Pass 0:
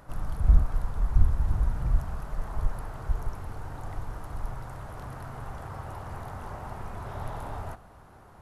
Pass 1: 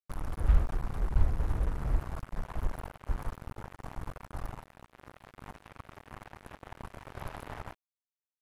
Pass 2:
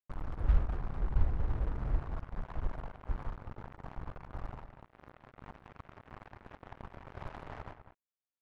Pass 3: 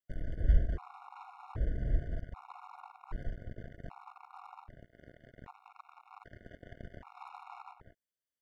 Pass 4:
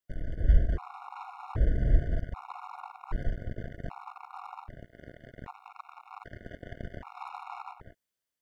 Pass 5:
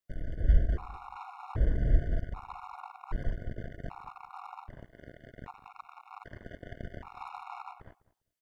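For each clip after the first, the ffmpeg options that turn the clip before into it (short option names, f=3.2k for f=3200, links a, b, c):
-af "acrusher=bits=4:mix=0:aa=0.5,volume=-5dB"
-filter_complex "[0:a]asplit=2[a][b];[b]adelay=198.3,volume=-10dB,highshelf=f=4k:g=-4.46[c];[a][c]amix=inputs=2:normalize=0,adynamicsmooth=sensitivity=7.5:basefreq=2.6k,volume=-3dB"
-af "afftfilt=real='re*gt(sin(2*PI*0.64*pts/sr)*(1-2*mod(floor(b*sr/1024/720),2)),0)':imag='im*gt(sin(2*PI*0.64*pts/sr)*(1-2*mod(floor(b*sr/1024/720),2)),0)':win_size=1024:overlap=0.75,volume=1.5dB"
-af "dynaudnorm=f=280:g=5:m=5dB,volume=2.5dB"
-filter_complex "[0:a]asplit=2[a][b];[b]adelay=201,lowpass=f=1.4k:p=1,volume=-18.5dB,asplit=2[c][d];[d]adelay=201,lowpass=f=1.4k:p=1,volume=0.18[e];[a][c][e]amix=inputs=3:normalize=0,volume=-1.5dB"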